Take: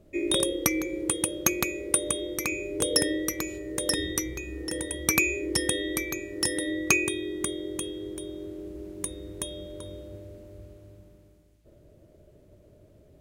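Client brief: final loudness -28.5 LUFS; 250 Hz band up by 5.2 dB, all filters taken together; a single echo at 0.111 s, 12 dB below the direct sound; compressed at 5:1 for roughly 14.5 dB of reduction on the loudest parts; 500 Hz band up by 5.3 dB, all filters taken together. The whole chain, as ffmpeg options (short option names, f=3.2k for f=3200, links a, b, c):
-af "equalizer=f=250:t=o:g=5,equalizer=f=500:t=o:g=5,acompressor=threshold=-35dB:ratio=5,aecho=1:1:111:0.251,volume=9dB"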